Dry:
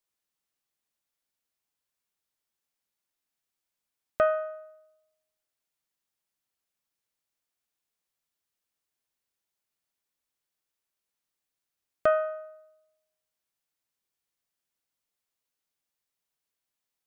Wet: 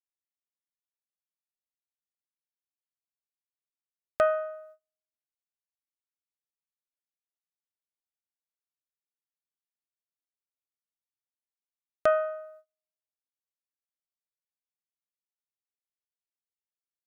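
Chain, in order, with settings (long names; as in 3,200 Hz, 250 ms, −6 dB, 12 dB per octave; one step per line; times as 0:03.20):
noise gate −52 dBFS, range −31 dB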